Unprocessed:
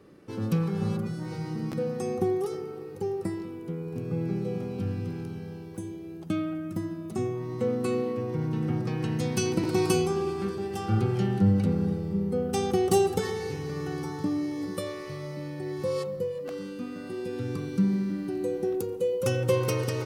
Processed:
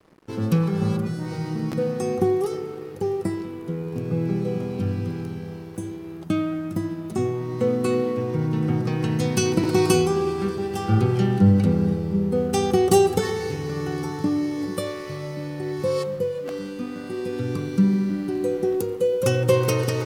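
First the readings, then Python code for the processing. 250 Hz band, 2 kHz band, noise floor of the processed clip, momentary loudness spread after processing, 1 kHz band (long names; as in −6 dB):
+5.5 dB, +5.5 dB, −36 dBFS, 12 LU, +6.0 dB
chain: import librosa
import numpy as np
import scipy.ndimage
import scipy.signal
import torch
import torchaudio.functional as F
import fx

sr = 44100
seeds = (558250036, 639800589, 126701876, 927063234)

y = np.sign(x) * np.maximum(np.abs(x) - 10.0 ** (-53.5 / 20.0), 0.0)
y = F.gain(torch.from_numpy(y), 6.0).numpy()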